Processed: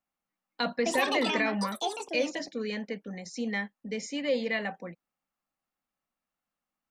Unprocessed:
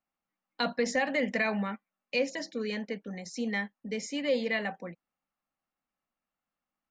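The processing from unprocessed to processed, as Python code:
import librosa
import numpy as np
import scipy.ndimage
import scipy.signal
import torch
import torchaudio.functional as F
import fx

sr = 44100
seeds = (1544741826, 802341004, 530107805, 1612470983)

y = fx.echo_pitch(x, sr, ms=85, semitones=6, count=2, db_per_echo=-3.0, at=(0.75, 3.08))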